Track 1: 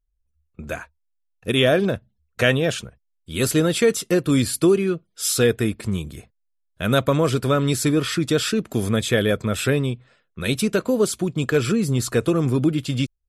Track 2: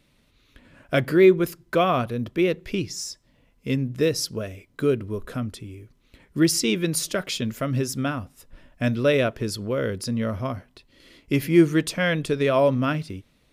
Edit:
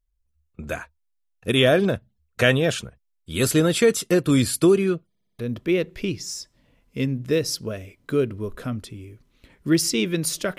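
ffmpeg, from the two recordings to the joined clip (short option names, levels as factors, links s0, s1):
-filter_complex "[0:a]apad=whole_dur=10.58,atrim=end=10.58,asplit=5[s0][s1][s2][s3][s4];[s0]atrim=end=5.152[s5];[s1]atrim=start=5.088:end=5.152[s6];[s2]atrim=start=5.088:end=5.152[s7];[s3]atrim=start=5.088:end=5.152[s8];[s4]atrim=start=5.088:end=5.152[s9];[1:a]atrim=start=2.088:end=7.28[s10];[s5][s6]acrossfade=d=0.004:c1=hsin:c2=hsin[s11];[s11][s7]acrossfade=d=0.004:c1=hsin:c2=hsin[s12];[s12][s8]acrossfade=d=0.004:c1=hsin:c2=hsin[s13];[s13][s9]acrossfade=d=0.004:c1=hsin:c2=hsin[s14];[s14][s10]acrossfade=d=0.004:c1=hsin:c2=hsin"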